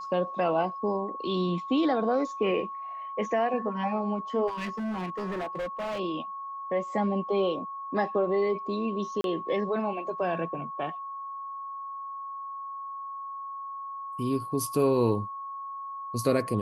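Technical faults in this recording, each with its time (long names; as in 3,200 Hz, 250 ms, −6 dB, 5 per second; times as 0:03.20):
whistle 1,100 Hz −35 dBFS
0:04.47–0:06.00: clipping −29.5 dBFS
0:09.21–0:09.24: drop-out 32 ms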